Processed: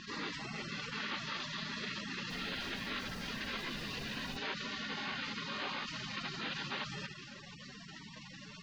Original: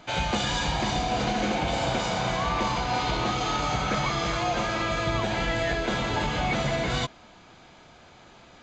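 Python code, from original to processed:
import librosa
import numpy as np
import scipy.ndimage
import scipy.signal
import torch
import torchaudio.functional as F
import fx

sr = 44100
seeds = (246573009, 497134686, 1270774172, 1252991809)

y = fx.octave_divider(x, sr, octaves=2, level_db=-4.0)
y = scipy.signal.sosfilt(scipy.signal.butter(4, 370.0, 'highpass', fs=sr, output='sos'), y)
y = fx.rider(y, sr, range_db=10, speed_s=0.5)
y = fx.echo_feedback(y, sr, ms=70, feedback_pct=37, wet_db=-16.5)
y = fx.quant_float(y, sr, bits=4)
y = fx.spec_gate(y, sr, threshold_db=-25, keep='weak')
y = scipy.signal.sosfilt(scipy.signal.butter(4, 4000.0, 'lowpass', fs=sr, output='sos'), y)
y = fx.dmg_noise_colour(y, sr, seeds[0], colour='pink', level_db=-63.0, at=(2.29, 4.36), fade=0.02)
y = fx.high_shelf(y, sr, hz=2100.0, db=-9.0)
y = fx.env_flatten(y, sr, amount_pct=70)
y = F.gain(torch.from_numpy(y), 6.5).numpy()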